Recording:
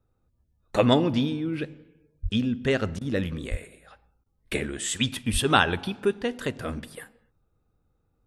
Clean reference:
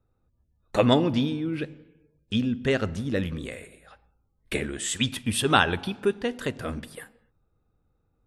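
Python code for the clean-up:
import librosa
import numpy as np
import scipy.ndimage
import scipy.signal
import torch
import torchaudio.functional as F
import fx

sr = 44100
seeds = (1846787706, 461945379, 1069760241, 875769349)

y = fx.fix_deplosive(x, sr, at_s=(2.22, 3.5, 5.32))
y = fx.fix_interpolate(y, sr, at_s=(2.99, 4.24), length_ms=20.0)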